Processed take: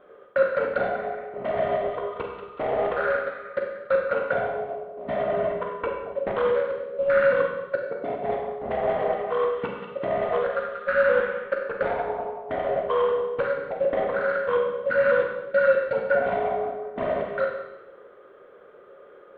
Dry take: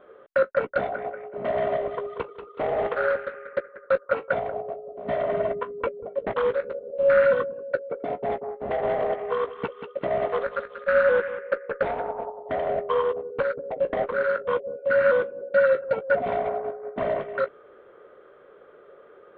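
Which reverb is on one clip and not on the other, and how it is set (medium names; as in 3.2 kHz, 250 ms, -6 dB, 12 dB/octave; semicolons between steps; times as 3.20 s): Schroeder reverb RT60 0.99 s, combs from 31 ms, DRR 1 dB; trim -1.5 dB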